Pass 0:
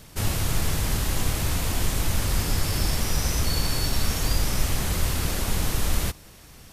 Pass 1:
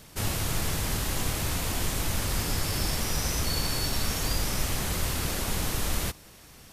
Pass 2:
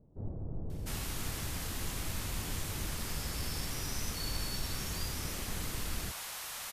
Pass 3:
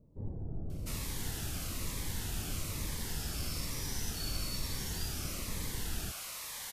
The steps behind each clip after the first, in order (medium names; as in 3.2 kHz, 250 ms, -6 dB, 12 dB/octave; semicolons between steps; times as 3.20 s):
bass shelf 120 Hz -5.5 dB; trim -1.5 dB
bands offset in time lows, highs 700 ms, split 630 Hz; trim -8.5 dB
Shepard-style phaser falling 1.1 Hz